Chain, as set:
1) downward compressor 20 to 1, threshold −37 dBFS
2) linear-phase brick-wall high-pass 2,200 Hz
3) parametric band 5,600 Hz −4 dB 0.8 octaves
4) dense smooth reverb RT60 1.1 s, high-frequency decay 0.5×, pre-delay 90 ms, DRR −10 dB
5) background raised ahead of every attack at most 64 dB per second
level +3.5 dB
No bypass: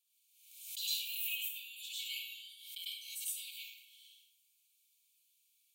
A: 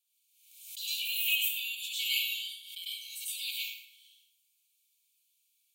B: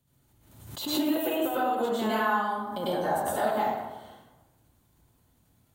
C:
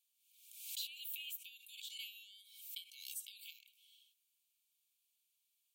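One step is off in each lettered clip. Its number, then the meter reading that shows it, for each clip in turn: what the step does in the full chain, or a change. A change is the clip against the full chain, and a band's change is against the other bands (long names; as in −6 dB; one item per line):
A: 1, average gain reduction 8.5 dB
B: 2, change in crest factor −6.0 dB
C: 4, change in momentary loudness spread +2 LU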